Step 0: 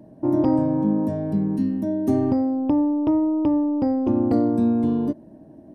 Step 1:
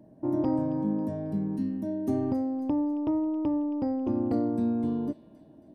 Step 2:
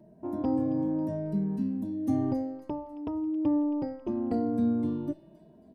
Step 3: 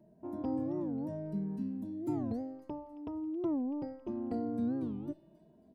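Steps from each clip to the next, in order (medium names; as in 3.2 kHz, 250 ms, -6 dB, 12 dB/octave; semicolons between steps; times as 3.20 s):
feedback echo behind a high-pass 272 ms, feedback 51%, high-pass 1.7 kHz, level -12 dB; trim -7.5 dB
endless flanger 2.7 ms +0.74 Hz; trim +2 dB
warped record 45 rpm, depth 250 cents; trim -7 dB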